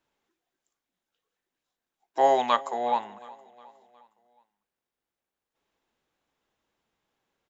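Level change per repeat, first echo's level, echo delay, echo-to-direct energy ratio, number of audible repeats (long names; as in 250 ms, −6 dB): −6.0 dB, −21.5 dB, 362 ms, −20.0 dB, 3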